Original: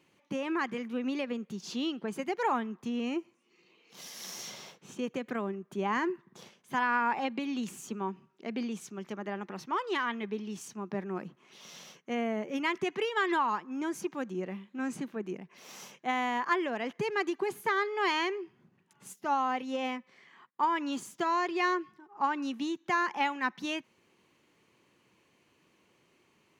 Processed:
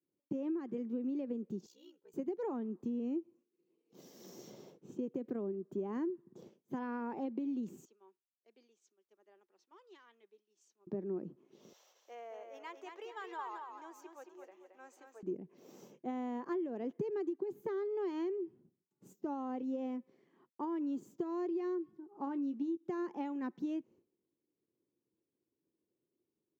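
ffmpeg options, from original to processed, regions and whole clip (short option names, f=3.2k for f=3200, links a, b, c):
-filter_complex "[0:a]asettb=1/sr,asplit=3[a][b][c];[a]atrim=end=1.664[d];[b]atrim=start=1.66:end=2.14,asetpts=PTS-STARTPTS,afade=t=in:d=0.004:c=qsin,afade=t=out:st=0.476:d=0.004:c=qsin,aderivative,aeval=exprs='val(0)*sin(2*PI*31*n/s)':c=same,aecho=1:1:2.1:0.7,atrim=end_sample=21168[e];[c]atrim=start=2.136[f];[d][e]acrossfade=d=0.004:c1=hsin:c2=qsin[g];[g][f]acrossfade=d=0.004:c1=qsin:c2=hsin,asettb=1/sr,asplit=3[h][i][j];[h]atrim=end=7.854[k];[i]atrim=start=7.85:end=10.87,asetpts=PTS-STARTPTS,afade=t=in:d=0.004:c=qsin,afade=t=out:st=3.016:d=0.004:c=qsin,highpass=410,lowpass=5k,aderivative[l];[j]atrim=start=10.866[m];[k][l]acrossfade=d=0.004:c1=hsin:c2=qsin[n];[n][m]acrossfade=d=0.004:c1=qsin:c2=hsin,asettb=1/sr,asplit=3[o][p][q];[o]atrim=end=11.734[r];[p]atrim=start=11.73:end=15.23,asetpts=PTS-STARTPTS,afade=t=in:d=0.004:c=qsin,afade=t=out:st=3.496:d=0.004:c=qsin,highpass=f=740:w=0.5412,highpass=f=740:w=1.3066,aecho=1:1:222|444|666|888:0.531|0.181|0.0614|0.0209,atrim=end_sample=154350[s];[q]atrim=start=15.226[t];[r][s]acrossfade=d=0.004:c1=hsin:c2=qsin[u];[u][t]acrossfade=d=0.004:c1=qsin:c2=hsin,asettb=1/sr,asplit=3[v][w][x];[v]atrim=end=22.254[y];[w]atrim=start=22.25:end=22.77,asetpts=PTS-STARTPTS,afade=t=in:d=0.004:c=qsin,afade=t=out:st=0.516:d=0.004:c=qsin,lowpass=7.4k,asplit=2[z][aa];[aa]adelay=18,volume=-9dB[ab];[z][ab]amix=inputs=2:normalize=0,atrim=end_sample=22932[ac];[x]atrim=start=22.766[ad];[y][ac]acrossfade=d=0.004:c1=hsin:c2=qsin[ae];[ae][ad]acrossfade=d=0.004:c1=qsin:c2=hsin,agate=range=-33dB:threshold=-55dB:ratio=3:detection=peak,firequalizer=gain_entry='entry(200,0);entry(320,8);entry(700,-7);entry(1100,-14);entry(2100,-20);entry(7300,-14);entry(10000,-28);entry(15000,-6)':delay=0.05:min_phase=1,acompressor=threshold=-33dB:ratio=6,volume=-1.5dB"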